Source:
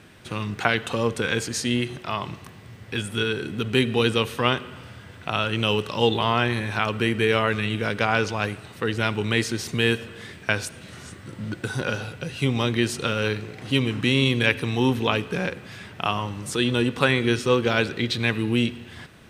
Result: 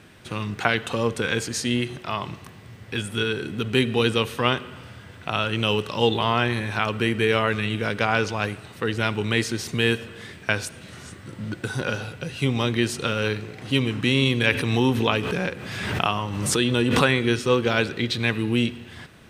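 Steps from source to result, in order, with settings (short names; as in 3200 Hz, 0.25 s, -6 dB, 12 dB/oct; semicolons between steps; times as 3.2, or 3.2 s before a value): 14.52–17.17 backwards sustainer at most 32 dB/s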